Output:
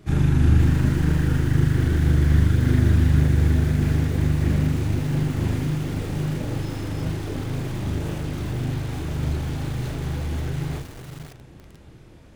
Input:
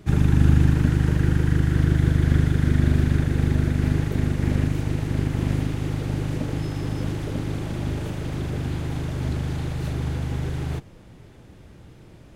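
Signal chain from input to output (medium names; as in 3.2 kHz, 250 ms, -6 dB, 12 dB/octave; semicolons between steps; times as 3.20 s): de-hum 56.58 Hz, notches 5; chorus voices 2, 0.92 Hz, delay 29 ms, depth 3 ms; multi-head delay 180 ms, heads second and third, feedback 49%, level -19.5 dB; bit-crushed delay 507 ms, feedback 35%, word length 6-bit, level -10 dB; trim +2.5 dB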